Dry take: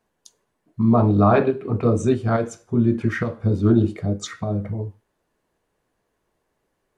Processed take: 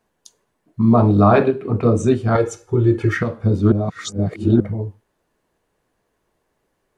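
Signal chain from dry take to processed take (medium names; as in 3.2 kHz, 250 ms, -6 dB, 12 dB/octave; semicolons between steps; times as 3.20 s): 0.83–1.48 s: treble shelf 6.9 kHz +9 dB; 2.35–3.17 s: comb 2.3 ms, depth 94%; 3.72–4.60 s: reverse; trim +3 dB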